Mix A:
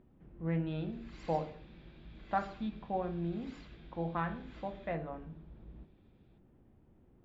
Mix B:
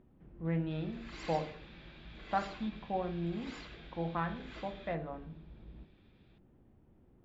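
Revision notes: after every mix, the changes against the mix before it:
background +8.5 dB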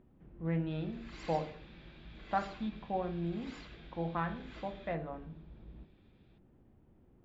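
background -3.0 dB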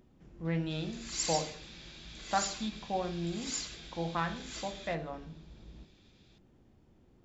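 master: remove air absorption 490 m

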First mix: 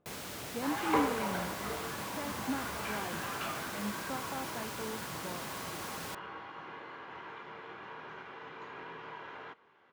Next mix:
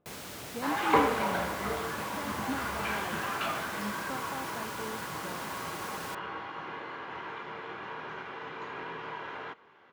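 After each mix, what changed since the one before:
second sound +6.0 dB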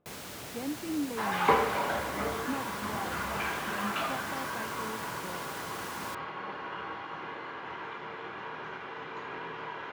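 second sound: entry +0.55 s

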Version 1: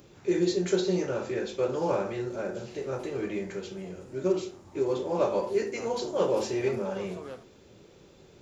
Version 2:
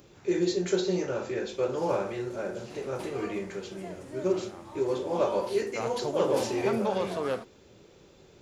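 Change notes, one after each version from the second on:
background +12.0 dB; master: add bell 170 Hz -2 dB 2 oct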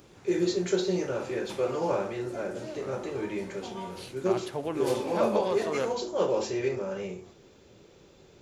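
background: entry -1.50 s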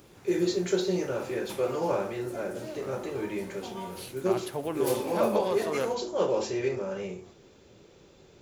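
background: remove LPF 7500 Hz 12 dB/oct

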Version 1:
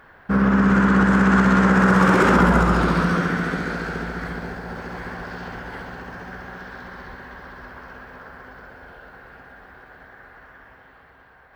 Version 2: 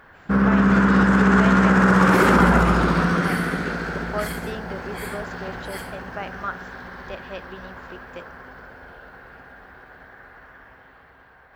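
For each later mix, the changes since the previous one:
speech: unmuted; second sound: remove polynomial smoothing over 41 samples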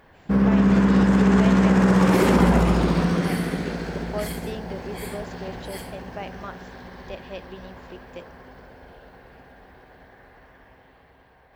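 master: add bell 1400 Hz -12.5 dB 0.72 oct

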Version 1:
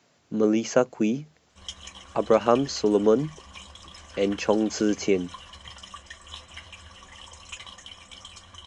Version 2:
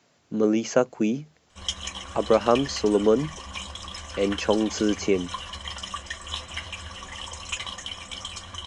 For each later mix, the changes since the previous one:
background +8.5 dB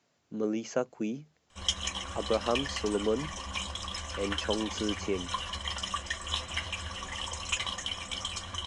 speech -9.5 dB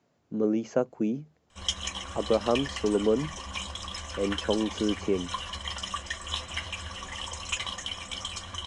speech: add tilt shelf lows +6 dB, about 1300 Hz

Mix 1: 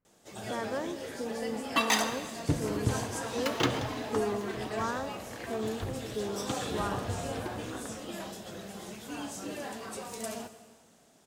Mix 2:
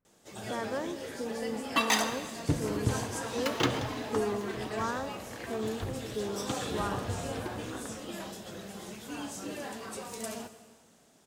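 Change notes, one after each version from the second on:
first sound: add bell 690 Hz -2.5 dB 0.34 oct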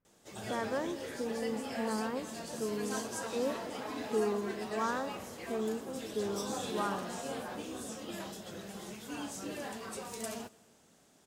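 first sound: send -11.0 dB; second sound: muted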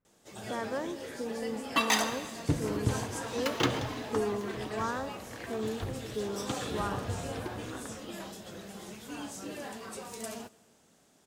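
second sound: unmuted

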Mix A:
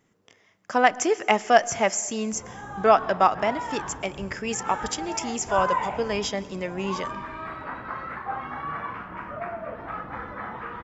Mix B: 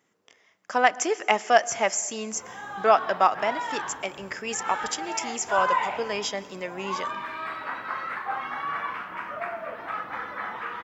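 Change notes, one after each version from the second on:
background: add high shelf 2100 Hz +11 dB; master: add HPF 460 Hz 6 dB/oct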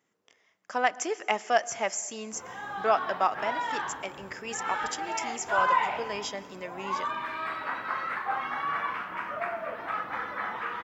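speech -5.5 dB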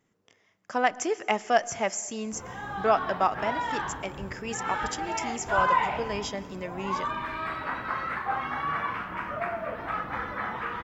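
master: remove HPF 460 Hz 6 dB/oct

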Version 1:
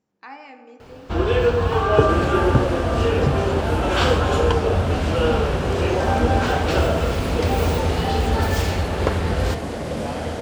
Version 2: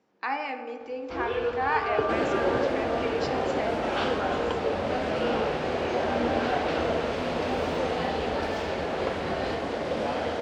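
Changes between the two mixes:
speech +9.5 dB; first sound -9.5 dB; master: add three-band isolator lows -13 dB, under 260 Hz, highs -20 dB, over 5400 Hz

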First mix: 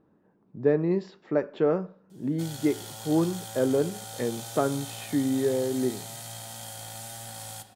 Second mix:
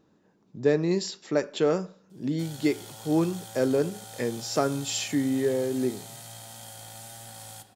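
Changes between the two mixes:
speech: remove LPF 1600 Hz 12 dB/oct; background -3.5 dB

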